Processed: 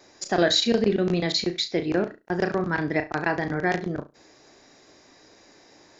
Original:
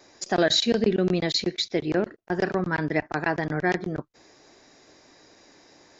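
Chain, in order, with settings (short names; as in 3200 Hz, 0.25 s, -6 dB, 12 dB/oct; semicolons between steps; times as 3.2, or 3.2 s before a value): flutter echo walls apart 6 m, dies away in 0.23 s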